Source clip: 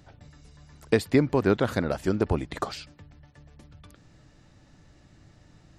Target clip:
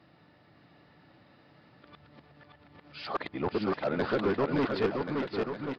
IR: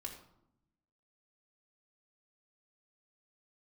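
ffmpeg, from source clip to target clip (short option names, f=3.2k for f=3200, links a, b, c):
-filter_complex "[0:a]areverse,highpass=140,bandreject=f=1.6k:w=24,aresample=11025,asoftclip=type=hard:threshold=-21.5dB,aresample=44100,asplit=2[a][b];[b]highpass=f=720:p=1,volume=8dB,asoftclip=type=tanh:threshold=-19dB[c];[a][c]amix=inputs=2:normalize=0,lowpass=f=1.8k:p=1,volume=-6dB,asplit=2[d][e];[e]aecho=0:1:570|1083|1545|1960|2334:0.631|0.398|0.251|0.158|0.1[f];[d][f]amix=inputs=2:normalize=0"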